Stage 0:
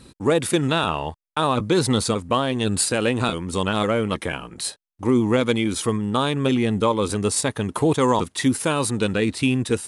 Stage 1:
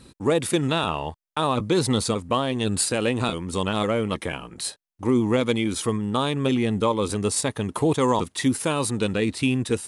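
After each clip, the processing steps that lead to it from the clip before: dynamic EQ 1500 Hz, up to -4 dB, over -40 dBFS, Q 4.6; gain -2 dB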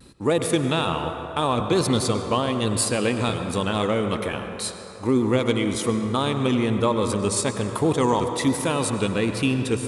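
vibrato 1.2 Hz 52 cents; on a send at -6 dB: reverb RT60 3.7 s, pre-delay 77 ms

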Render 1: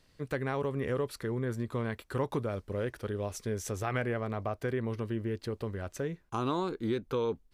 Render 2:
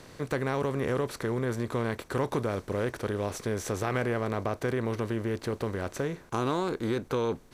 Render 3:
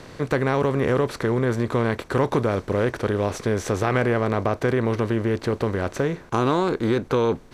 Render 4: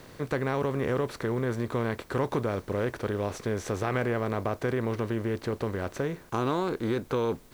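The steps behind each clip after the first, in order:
per-bin compression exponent 0.6
high shelf 7700 Hz -11.5 dB; gain +8 dB
added noise white -55 dBFS; gain -7 dB

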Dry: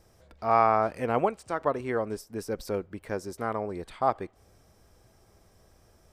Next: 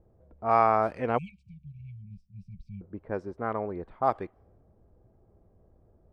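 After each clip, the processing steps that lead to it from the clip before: spectral delete 1.18–2.82, 210–2200 Hz; low-pass opened by the level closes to 550 Hz, open at -20 dBFS; dynamic EQ 5100 Hz, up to -4 dB, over -43 dBFS, Q 0.78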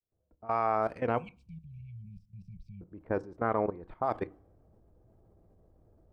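opening faded in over 1.49 s; level quantiser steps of 17 dB; on a send at -15.5 dB: reverb RT60 0.35 s, pre-delay 3 ms; on the sum: gain +5.5 dB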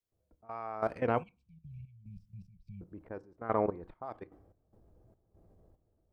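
step gate "xx..xx..x.xx." 73 bpm -12 dB

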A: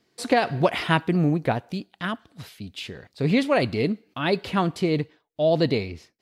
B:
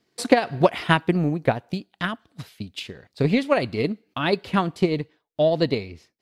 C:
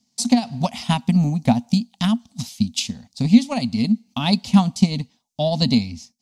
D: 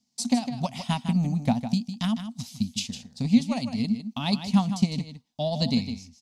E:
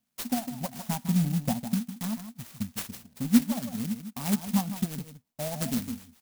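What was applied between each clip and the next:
transient shaper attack +8 dB, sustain -2 dB; gain -2.5 dB
EQ curve 160 Hz 0 dB, 240 Hz +12 dB, 340 Hz -23 dB, 520 Hz -14 dB, 800 Hz 0 dB, 1600 Hz -17 dB, 2200 Hz -7 dB, 4000 Hz +3 dB, 6200 Hz +14 dB, 13000 Hz +1 dB; AGC gain up to 9 dB; gain -1 dB
echo 0.155 s -10 dB; gain -7 dB
flange 0.38 Hz, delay 1.4 ms, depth 4.8 ms, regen +48%; clock jitter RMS 0.13 ms

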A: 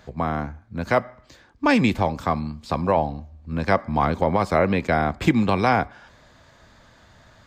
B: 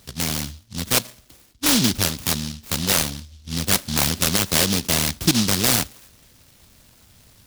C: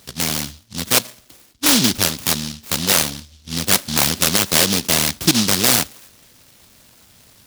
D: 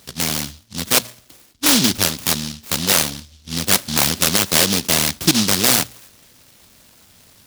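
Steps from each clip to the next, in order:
noise-modulated delay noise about 4300 Hz, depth 0.43 ms
low shelf 110 Hz -11.5 dB; gain +4 dB
notches 60/120 Hz

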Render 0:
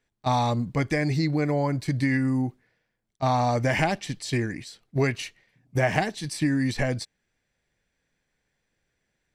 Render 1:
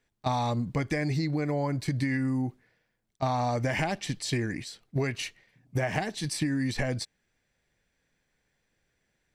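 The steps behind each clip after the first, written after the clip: compressor, threshold -26 dBFS, peak gain reduction 8.5 dB; gain +1 dB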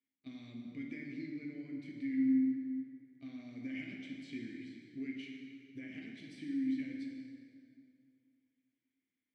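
vowel filter i; plate-style reverb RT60 2.5 s, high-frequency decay 0.7×, DRR -1 dB; gain -7.5 dB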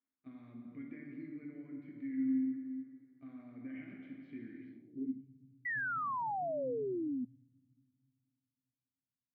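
low-pass sweep 1300 Hz -> 130 Hz, 4.7–5.28; painted sound fall, 5.65–7.25, 240–2000 Hz -33 dBFS; gain -3.5 dB

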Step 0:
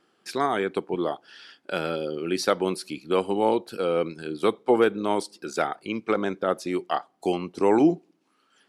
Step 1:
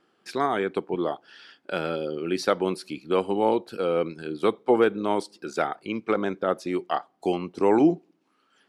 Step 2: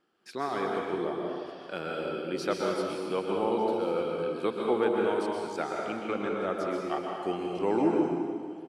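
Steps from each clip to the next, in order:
high shelf 5300 Hz -7.5 dB
echo 1.198 s -22 dB; plate-style reverb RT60 1.9 s, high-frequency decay 0.95×, pre-delay 0.11 s, DRR -1.5 dB; gain -8 dB

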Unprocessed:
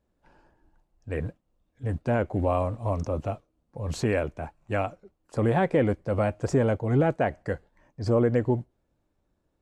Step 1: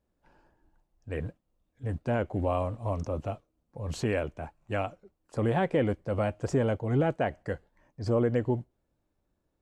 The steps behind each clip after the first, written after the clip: dynamic EQ 3000 Hz, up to +6 dB, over -59 dBFS, Q 5.7; gain -3.5 dB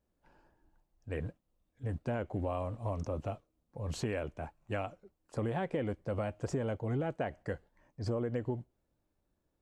compressor, threshold -28 dBFS, peak gain reduction 7 dB; gain -2.5 dB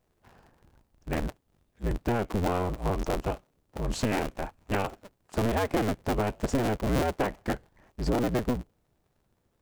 cycle switcher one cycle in 2, inverted; gain +7.5 dB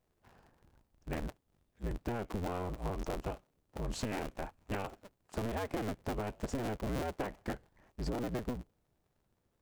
compressor, threshold -27 dBFS, peak gain reduction 6 dB; gain -5.5 dB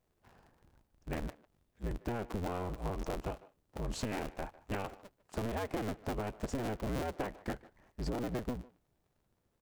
speakerphone echo 0.15 s, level -18 dB

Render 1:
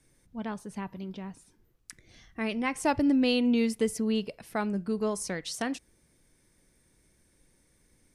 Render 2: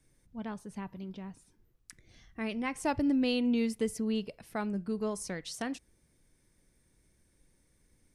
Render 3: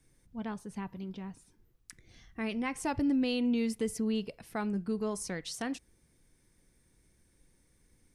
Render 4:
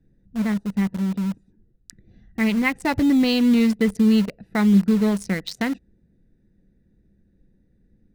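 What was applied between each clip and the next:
low shelf 150 Hz +5 dB; gain -5 dB
notch 600 Hz, Q 12; in parallel at +1.5 dB: limiter -26.5 dBFS, peak gain reduction 9.5 dB; on the sum: gain -5.5 dB
Wiener smoothing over 41 samples; thirty-one-band EQ 200 Hz +10 dB, 2000 Hz +11 dB, 4000 Hz +8 dB, 10000 Hz -4 dB; in parallel at -8 dB: bit-crush 6-bit; on the sum: gain +7 dB

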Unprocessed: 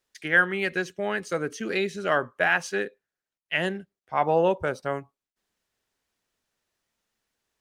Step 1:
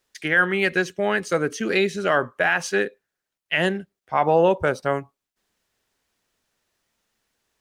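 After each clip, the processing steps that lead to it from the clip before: maximiser +13 dB; gain -7 dB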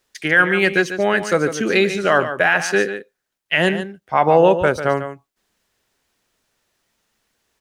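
echo 0.144 s -10.5 dB; gain +4.5 dB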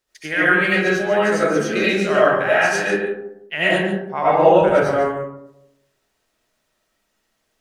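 reverb RT60 0.85 s, pre-delay 50 ms, DRR -9 dB; gain -9.5 dB

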